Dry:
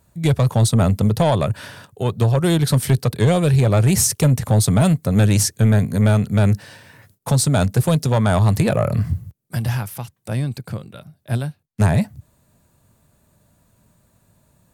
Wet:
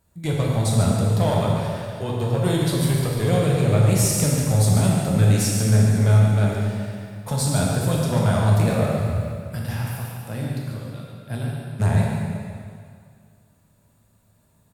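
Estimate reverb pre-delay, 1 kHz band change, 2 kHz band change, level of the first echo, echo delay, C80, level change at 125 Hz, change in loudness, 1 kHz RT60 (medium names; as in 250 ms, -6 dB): 4 ms, -3.0 dB, -3.0 dB, -7.5 dB, 142 ms, 0.0 dB, -2.0 dB, -3.0 dB, 2.1 s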